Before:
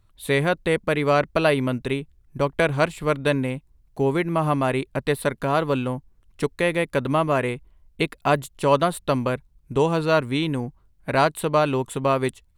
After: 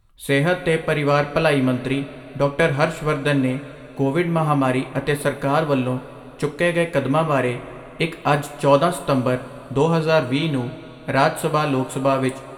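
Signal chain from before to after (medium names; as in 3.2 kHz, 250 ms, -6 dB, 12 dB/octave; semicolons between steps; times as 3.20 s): two-slope reverb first 0.29 s, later 3.7 s, from -19 dB, DRR 4.5 dB; trim +1 dB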